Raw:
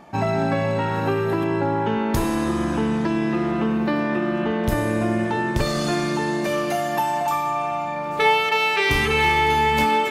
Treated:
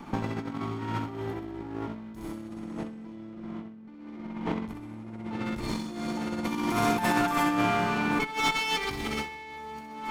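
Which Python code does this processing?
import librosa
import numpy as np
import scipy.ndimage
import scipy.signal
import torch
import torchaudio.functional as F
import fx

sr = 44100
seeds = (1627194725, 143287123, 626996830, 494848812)

y = fx.lower_of_two(x, sr, delay_ms=0.9)
y = fx.peak_eq(y, sr, hz=280.0, db=10.0, octaves=1.2)
y = fx.echo_feedback(y, sr, ms=64, feedback_pct=53, wet_db=-3.5)
y = fx.over_compress(y, sr, threshold_db=-23.0, ratio=-0.5)
y = fx.high_shelf(y, sr, hz=10000.0, db=-10.5, at=(3.15, 5.45))
y = y * 10.0 ** (-7.5 / 20.0)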